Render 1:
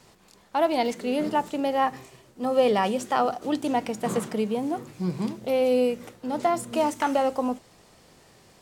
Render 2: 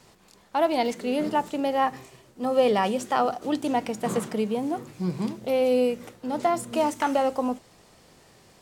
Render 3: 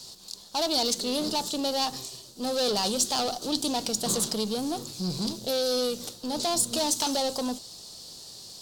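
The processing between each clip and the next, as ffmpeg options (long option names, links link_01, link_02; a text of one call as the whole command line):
ffmpeg -i in.wav -af anull out.wav
ffmpeg -i in.wav -af "asoftclip=type=tanh:threshold=-24.5dB,aeval=exprs='0.0596*(cos(1*acos(clip(val(0)/0.0596,-1,1)))-cos(1*PI/2))+0.00266*(cos(6*acos(clip(val(0)/0.0596,-1,1)))-cos(6*PI/2))':channel_layout=same,highshelf=frequency=3000:width_type=q:width=3:gain=12.5" out.wav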